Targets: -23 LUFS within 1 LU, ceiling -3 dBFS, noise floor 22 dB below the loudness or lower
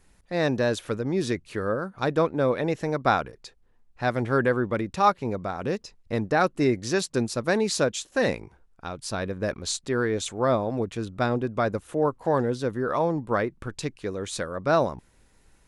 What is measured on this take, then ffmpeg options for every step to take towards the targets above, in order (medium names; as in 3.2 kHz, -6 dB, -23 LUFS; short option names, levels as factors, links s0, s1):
loudness -26.5 LUFS; peak level -7.0 dBFS; loudness target -23.0 LUFS
-> -af "volume=1.5"